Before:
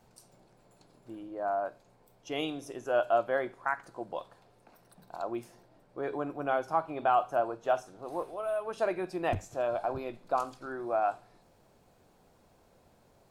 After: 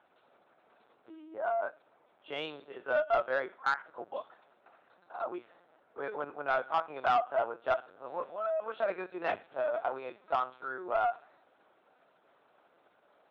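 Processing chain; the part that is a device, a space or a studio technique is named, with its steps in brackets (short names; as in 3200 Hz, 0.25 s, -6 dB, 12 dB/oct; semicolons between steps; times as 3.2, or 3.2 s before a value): talking toy (LPC vocoder at 8 kHz pitch kept; HPF 420 Hz 12 dB/oct; bell 1400 Hz +7 dB 0.46 oct; soft clip -19.5 dBFS, distortion -16 dB)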